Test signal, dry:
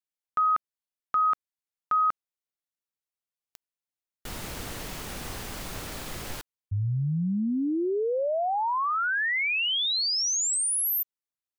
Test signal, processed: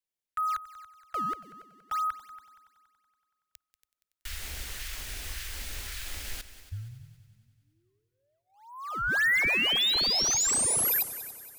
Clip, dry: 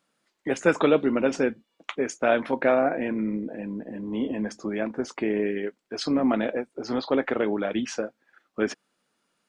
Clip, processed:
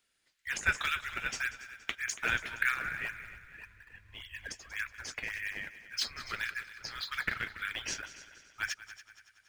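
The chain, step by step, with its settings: dynamic bell 1.5 kHz, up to +3 dB, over -39 dBFS, Q 1.8; inverse Chebyshev band-stop 170–740 Hz, stop band 50 dB; in parallel at -11 dB: decimation with a swept rate 17×, swing 160% 1.8 Hz; on the sum: multi-head delay 94 ms, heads second and third, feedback 46%, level -16 dB

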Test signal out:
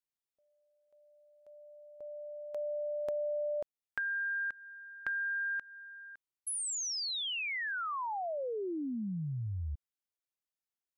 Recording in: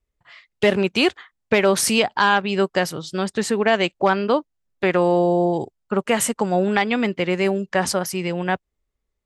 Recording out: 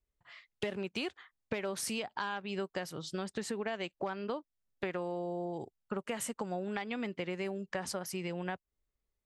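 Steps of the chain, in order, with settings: compression 6:1, threshold -26 dBFS; trim -8 dB

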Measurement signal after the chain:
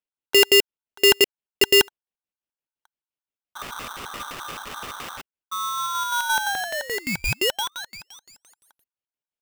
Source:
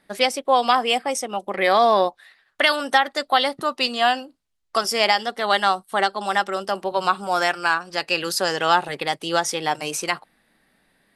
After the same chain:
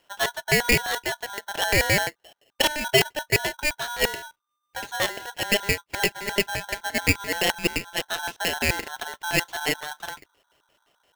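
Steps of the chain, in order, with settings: LFO low-pass square 5.8 Hz 330–1700 Hz; polarity switched at an audio rate 1.2 kHz; trim -5 dB

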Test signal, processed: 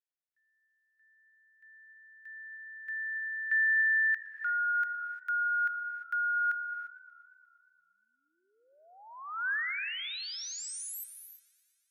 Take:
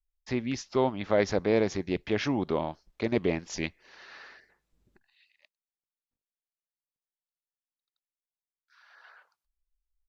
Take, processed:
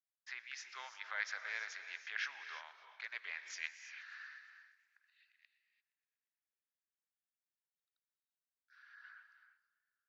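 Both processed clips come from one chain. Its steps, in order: ladder high-pass 1.4 kHz, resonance 60%; gated-style reverb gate 370 ms rising, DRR 8.5 dB; modulated delay 118 ms, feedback 75%, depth 97 cents, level -23 dB

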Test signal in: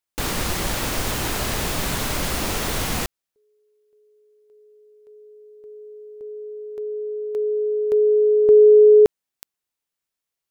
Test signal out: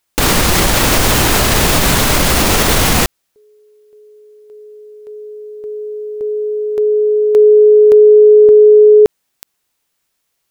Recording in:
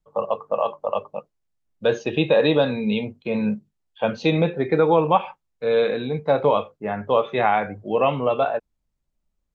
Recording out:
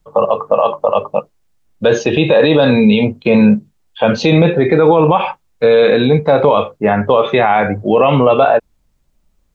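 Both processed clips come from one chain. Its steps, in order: loudness maximiser +17 dB; trim -1 dB

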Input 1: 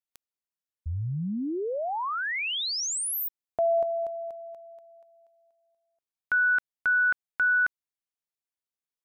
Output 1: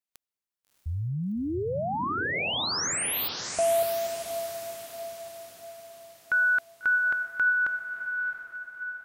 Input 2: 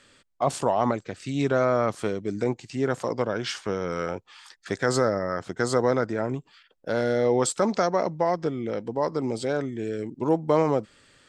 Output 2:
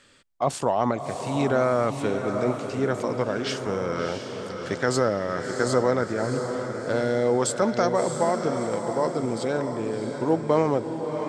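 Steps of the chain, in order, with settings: echo that smears into a reverb 666 ms, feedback 50%, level -6.5 dB

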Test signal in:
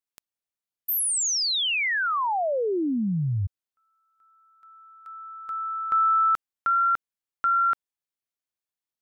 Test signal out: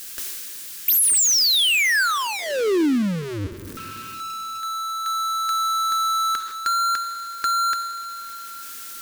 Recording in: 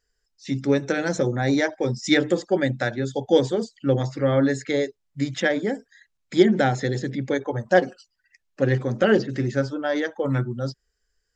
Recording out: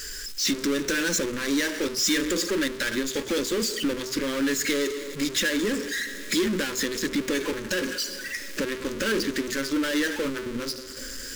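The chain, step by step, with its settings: in parallel at -7 dB: wavefolder -17.5 dBFS; on the sum: treble shelf 2.8 kHz +11 dB; compression 6:1, threshold -28 dBFS; graphic EQ with 31 bands 125 Hz +8 dB, 800 Hz +9 dB, 1.6 kHz +6 dB; two-slope reverb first 0.79 s, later 3.1 s, from -20 dB, DRR 16.5 dB; power-law waveshaper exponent 0.35; static phaser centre 310 Hz, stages 4; trim -2.5 dB

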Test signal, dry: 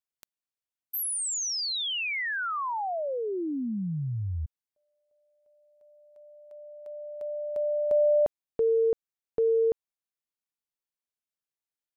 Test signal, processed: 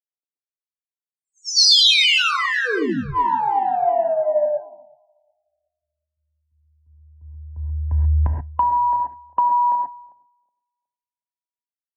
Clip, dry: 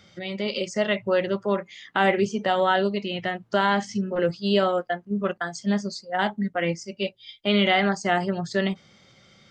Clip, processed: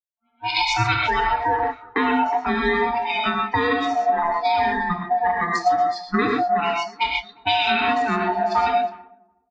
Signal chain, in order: split-band scrambler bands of 500 Hz; spectral noise reduction 20 dB; three-band isolator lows -22 dB, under 190 Hz, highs -22 dB, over 4.9 kHz; gated-style reverb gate 150 ms rising, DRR 0.5 dB; dynamic bell 2.2 kHz, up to -3 dB, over -43 dBFS, Q 6.4; level rider gain up to 10 dB; in parallel at -1 dB: peak limiter -11.5 dBFS; on the sum: compression 6:1, threshold -17 dBFS; feedback comb 100 Hz, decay 0.31 s, harmonics all, mix 40%; on a send: feedback delay 368 ms, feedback 57%, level -17 dB; on the sum: level-controlled noise filter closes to 520 Hz, open at -18.5 dBFS; three bands expanded up and down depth 100%; trim +2.5 dB

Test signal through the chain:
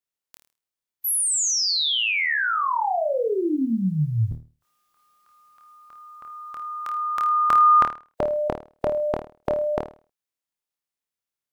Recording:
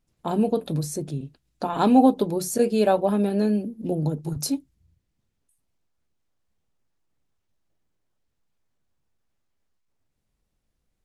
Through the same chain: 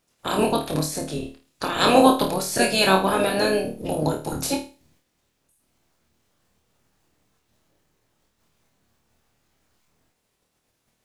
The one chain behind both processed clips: spectral peaks clipped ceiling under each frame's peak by 24 dB; flutter echo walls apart 4.5 m, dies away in 0.34 s

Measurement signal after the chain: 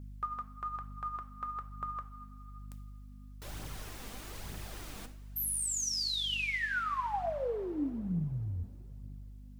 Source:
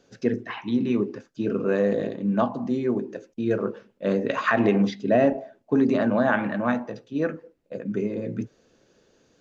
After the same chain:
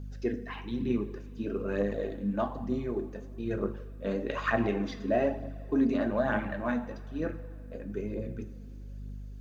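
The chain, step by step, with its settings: two-slope reverb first 0.45 s, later 3.1 s, from -16 dB, DRR 8 dB; word length cut 12-bit, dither triangular; hum 50 Hz, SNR 11 dB; phaser 1.1 Hz, delay 4.6 ms, feedback 41%; trim -8.5 dB

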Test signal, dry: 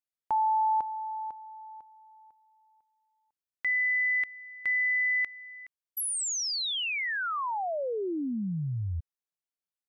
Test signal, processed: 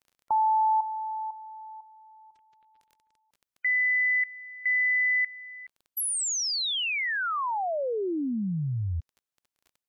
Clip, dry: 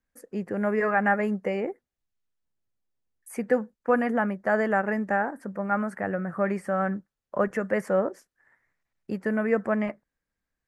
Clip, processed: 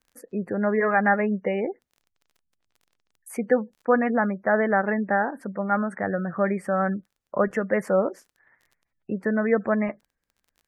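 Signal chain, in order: crackle 26 per s -48 dBFS; spectral gate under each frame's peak -30 dB strong; trim +2.5 dB

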